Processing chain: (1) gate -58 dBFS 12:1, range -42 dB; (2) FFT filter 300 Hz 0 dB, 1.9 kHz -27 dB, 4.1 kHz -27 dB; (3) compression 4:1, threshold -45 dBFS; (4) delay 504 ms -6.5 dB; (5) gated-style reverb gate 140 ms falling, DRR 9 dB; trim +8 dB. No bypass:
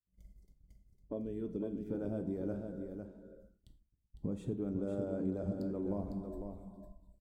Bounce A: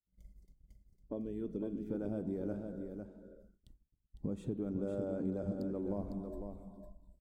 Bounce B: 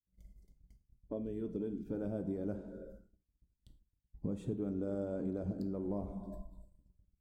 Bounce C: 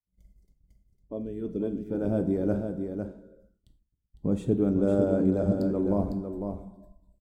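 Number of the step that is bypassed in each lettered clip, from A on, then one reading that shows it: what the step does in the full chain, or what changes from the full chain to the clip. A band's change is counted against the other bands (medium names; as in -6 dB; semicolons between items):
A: 5, echo-to-direct -4.0 dB to -6.5 dB; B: 4, echo-to-direct -4.0 dB to -9.0 dB; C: 3, mean gain reduction 8.0 dB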